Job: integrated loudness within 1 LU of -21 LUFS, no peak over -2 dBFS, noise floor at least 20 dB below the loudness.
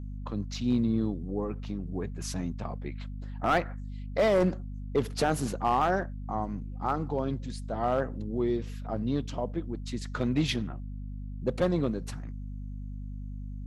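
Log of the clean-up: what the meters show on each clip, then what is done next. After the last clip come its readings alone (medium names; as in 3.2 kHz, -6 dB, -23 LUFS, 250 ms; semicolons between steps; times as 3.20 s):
clipped samples 0.5%; clipping level -18.0 dBFS; hum 50 Hz; highest harmonic 250 Hz; hum level -35 dBFS; loudness -31.5 LUFS; peak level -18.0 dBFS; loudness target -21.0 LUFS
-> clip repair -18 dBFS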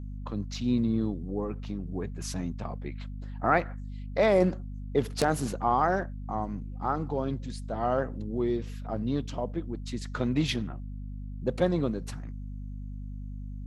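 clipped samples 0.0%; hum 50 Hz; highest harmonic 250 Hz; hum level -35 dBFS
-> de-hum 50 Hz, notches 5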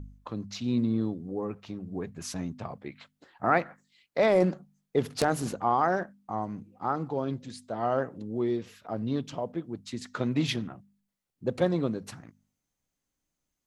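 hum not found; loudness -30.5 LUFS; peak level -9.0 dBFS; loudness target -21.0 LUFS
-> trim +9.5 dB; peak limiter -2 dBFS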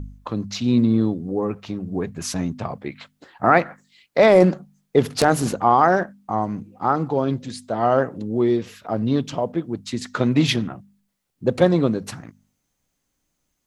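loudness -21.0 LUFS; peak level -2.0 dBFS; noise floor -75 dBFS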